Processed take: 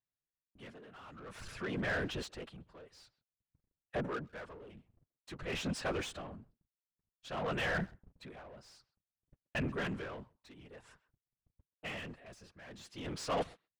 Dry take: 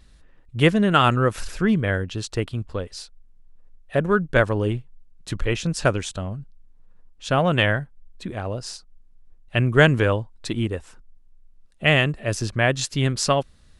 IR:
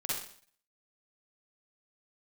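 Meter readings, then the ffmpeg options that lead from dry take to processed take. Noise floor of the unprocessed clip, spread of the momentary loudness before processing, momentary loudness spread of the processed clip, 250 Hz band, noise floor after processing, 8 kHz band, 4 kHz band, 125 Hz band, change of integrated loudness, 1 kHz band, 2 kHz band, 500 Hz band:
-52 dBFS, 17 LU, 20 LU, -18.5 dB, under -85 dBFS, -19.0 dB, -17.5 dB, -22.5 dB, -17.5 dB, -18.0 dB, -17.0 dB, -18.5 dB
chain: -filter_complex "[0:a]lowpass=f=3.3k:p=1,aemphasis=mode=production:type=50kf,areverse,acompressor=threshold=-27dB:ratio=20,areverse,aecho=1:1:7.3:0.53,afftfilt=real='hypot(re,im)*cos(2*PI*random(0))':imag='hypot(re,im)*sin(2*PI*random(1))':win_size=512:overlap=0.75,asoftclip=type=tanh:threshold=-27.5dB,asplit=2[a][b];[b]highpass=f=720:p=1,volume=20dB,asoftclip=type=tanh:threshold=-28dB[c];[a][c]amix=inputs=2:normalize=0,lowpass=f=2.1k:p=1,volume=-6dB,agate=range=-46dB:threshold=-47dB:ratio=16:detection=peak,asplit=2[d][e];[e]adelay=130,highpass=300,lowpass=3.4k,asoftclip=type=hard:threshold=-38dB,volume=-21dB[f];[d][f]amix=inputs=2:normalize=0,aeval=exprs='val(0)*pow(10,-20*(0.5-0.5*cos(2*PI*0.52*n/s))/20)':c=same,volume=1.5dB"

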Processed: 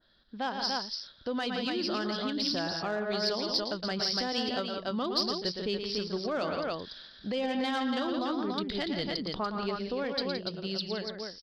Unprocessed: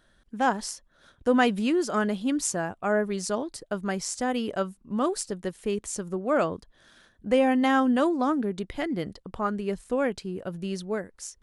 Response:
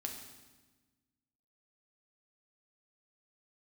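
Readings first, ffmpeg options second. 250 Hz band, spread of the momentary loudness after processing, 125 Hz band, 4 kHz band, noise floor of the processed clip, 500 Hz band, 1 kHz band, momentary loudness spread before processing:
-7.0 dB, 6 LU, -4.5 dB, +8.0 dB, -54 dBFS, -5.5 dB, -6.0 dB, 11 LU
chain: -filter_complex "[0:a]lowshelf=f=180:g=-4,dynaudnorm=f=340:g=11:m=5dB,aecho=1:1:113.7|169.1|288.6:0.398|0.316|0.501,aresample=11025,aresample=44100,asplit=2[a][b];[b]asoftclip=type=tanh:threshold=-17.5dB,volume=-9dB[c];[a][c]amix=inputs=2:normalize=0,alimiter=limit=-16.5dB:level=0:latency=1:release=249,aexciter=amount=3.2:drive=8:freq=3.5k,adynamicequalizer=threshold=0.01:dfrequency=2200:dqfactor=0.7:tfrequency=2200:tqfactor=0.7:attack=5:release=100:ratio=0.375:range=2.5:mode=boostabove:tftype=highshelf,volume=-7.5dB"

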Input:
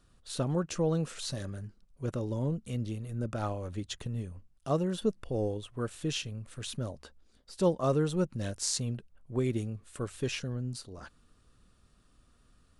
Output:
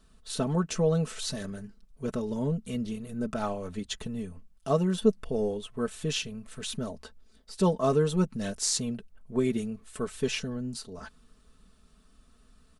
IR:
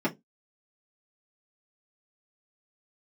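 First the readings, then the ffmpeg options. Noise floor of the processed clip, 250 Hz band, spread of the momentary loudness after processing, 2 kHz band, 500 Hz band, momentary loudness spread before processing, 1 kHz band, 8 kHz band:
-61 dBFS, +4.0 dB, 14 LU, +4.0 dB, +4.0 dB, 12 LU, +4.0 dB, +4.0 dB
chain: -af "aecho=1:1:4.6:0.73,volume=2dB"

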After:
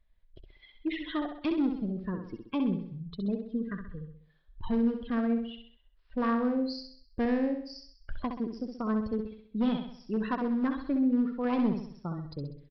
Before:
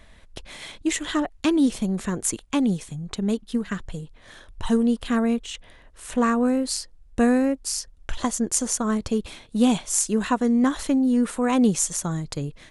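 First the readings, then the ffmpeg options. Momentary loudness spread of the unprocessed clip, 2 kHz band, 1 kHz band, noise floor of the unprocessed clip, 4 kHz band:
13 LU, -9.5 dB, -8.0 dB, -51 dBFS, -12.5 dB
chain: -af "afftdn=nr=23:nf=-30,aresample=11025,volume=15.5dB,asoftclip=hard,volume=-15.5dB,aresample=44100,aecho=1:1:65|130|195|260|325|390:0.473|0.222|0.105|0.0491|0.0231|0.0109,volume=-8dB"

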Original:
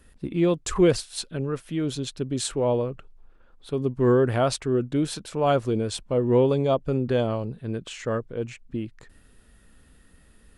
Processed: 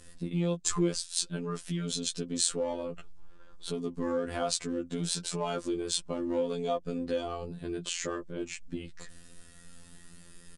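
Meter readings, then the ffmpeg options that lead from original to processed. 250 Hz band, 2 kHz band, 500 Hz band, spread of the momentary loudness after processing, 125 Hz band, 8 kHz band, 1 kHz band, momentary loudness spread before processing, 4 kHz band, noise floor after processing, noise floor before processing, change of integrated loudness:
-8.0 dB, -6.5 dB, -10.0 dB, 10 LU, -10.5 dB, +3.0 dB, -8.0 dB, 13 LU, 0.0 dB, -52 dBFS, -56 dBFS, -7.5 dB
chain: -filter_complex "[0:a]asplit=2[a][b];[b]asoftclip=type=hard:threshold=-21.5dB,volume=-11dB[c];[a][c]amix=inputs=2:normalize=0,afftfilt=real='hypot(re,im)*cos(PI*b)':imag='0':win_size=2048:overlap=0.75,lowpass=f=9.1k:w=0.5412,lowpass=f=9.1k:w=1.3066,flanger=delay=4:depth=1.1:regen=-40:speed=0.43:shape=sinusoidal,acontrast=21,aecho=1:1:5.7:0.38,acompressor=threshold=-38dB:ratio=2,bass=f=250:g=1,treble=f=4k:g=11,volume=1.5dB"

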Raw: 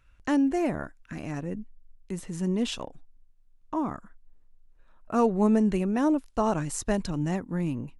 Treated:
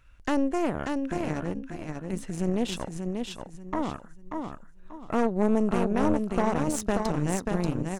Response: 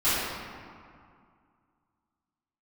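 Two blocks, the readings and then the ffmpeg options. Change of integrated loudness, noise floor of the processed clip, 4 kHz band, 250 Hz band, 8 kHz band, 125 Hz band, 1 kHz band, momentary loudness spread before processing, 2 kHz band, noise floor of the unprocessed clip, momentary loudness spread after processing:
-1.0 dB, -49 dBFS, +0.5 dB, -1.0 dB, +1.0 dB, +0.5 dB, +1.0 dB, 15 LU, +2.0 dB, -59 dBFS, 13 LU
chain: -af "acompressor=threshold=-43dB:ratio=1.5,aecho=1:1:586|1172|1758|2344:0.631|0.208|0.0687|0.0227,aeval=exprs='0.112*(cos(1*acos(clip(val(0)/0.112,-1,1)))-cos(1*PI/2))+0.02*(cos(3*acos(clip(val(0)/0.112,-1,1)))-cos(3*PI/2))+0.0251*(cos(4*acos(clip(val(0)/0.112,-1,1)))-cos(4*PI/2))+0.0141*(cos(5*acos(clip(val(0)/0.112,-1,1)))-cos(5*PI/2))+0.00501*(cos(7*acos(clip(val(0)/0.112,-1,1)))-cos(7*PI/2))':c=same,volume=6dB"

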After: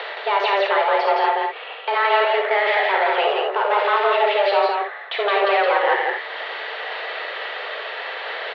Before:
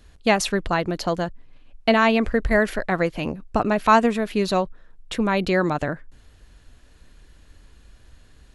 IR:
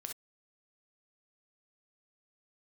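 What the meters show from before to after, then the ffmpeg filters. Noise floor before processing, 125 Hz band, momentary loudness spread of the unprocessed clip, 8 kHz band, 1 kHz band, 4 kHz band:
-52 dBFS, under -40 dB, 11 LU, under -20 dB, +6.0 dB, +6.0 dB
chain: -filter_complex "[0:a]asplit=2[a][b];[b]acompressor=mode=upward:threshold=-25dB:ratio=2.5,volume=-2.5dB[c];[a][c]amix=inputs=2:normalize=0,alimiter=limit=-8.5dB:level=0:latency=1,areverse,acompressor=threshold=-25dB:ratio=6,areverse,asplit=2[d][e];[e]highpass=f=720:p=1,volume=24dB,asoftclip=type=tanh:threshold=-17dB[f];[d][f]amix=inputs=2:normalize=0,lowpass=f=2.1k:p=1,volume=-6dB,aecho=1:1:87.46|169.1:0.355|0.794[g];[1:a]atrim=start_sample=2205[h];[g][h]afir=irnorm=-1:irlink=0,highpass=f=220:t=q:w=0.5412,highpass=f=220:t=q:w=1.307,lowpass=f=3.6k:t=q:w=0.5176,lowpass=f=3.6k:t=q:w=0.7071,lowpass=f=3.6k:t=q:w=1.932,afreqshift=200,volume=8dB"

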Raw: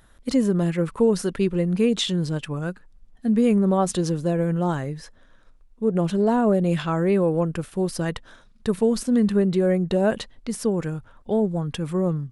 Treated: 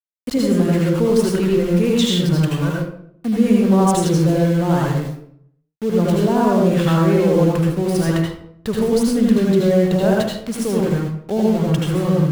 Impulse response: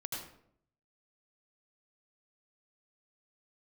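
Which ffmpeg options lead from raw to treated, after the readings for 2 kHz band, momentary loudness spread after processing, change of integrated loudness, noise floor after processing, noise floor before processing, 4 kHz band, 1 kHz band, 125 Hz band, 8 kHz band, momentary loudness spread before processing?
+6.0 dB, 9 LU, +5.5 dB, -53 dBFS, -53 dBFS, +6.0 dB, +6.0 dB, +7.5 dB, +5.5 dB, 10 LU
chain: -filter_complex "[0:a]asplit=2[a][b];[b]alimiter=limit=-17.5dB:level=0:latency=1,volume=0.5dB[c];[a][c]amix=inputs=2:normalize=0,aeval=exprs='val(0)*gte(abs(val(0)),0.0447)':c=same[d];[1:a]atrim=start_sample=2205[e];[d][e]afir=irnorm=-1:irlink=0"

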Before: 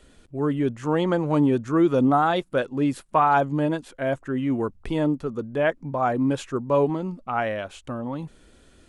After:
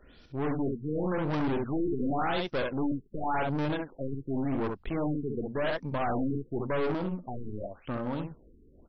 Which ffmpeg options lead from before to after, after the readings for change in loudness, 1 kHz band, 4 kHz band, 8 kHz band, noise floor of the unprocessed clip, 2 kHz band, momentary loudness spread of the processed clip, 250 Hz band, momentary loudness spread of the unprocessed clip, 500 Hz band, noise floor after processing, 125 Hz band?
-8.0 dB, -10.0 dB, -4.5 dB, n/a, -55 dBFS, -6.5 dB, 8 LU, -7.5 dB, 11 LU, -8.0 dB, -58 dBFS, -6.0 dB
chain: -filter_complex "[0:a]highshelf=f=3.2k:g=9.5,asplit=2[a][b];[b]aecho=0:1:45|66:0.188|0.473[c];[a][c]amix=inputs=2:normalize=0,aeval=exprs='(tanh(22.4*val(0)+0.6)-tanh(0.6))/22.4':c=same,afftfilt=real='re*lt(b*sr/1024,440*pow(6100/440,0.5+0.5*sin(2*PI*0.9*pts/sr)))':imag='im*lt(b*sr/1024,440*pow(6100/440,0.5+0.5*sin(2*PI*0.9*pts/sr)))':win_size=1024:overlap=0.75"

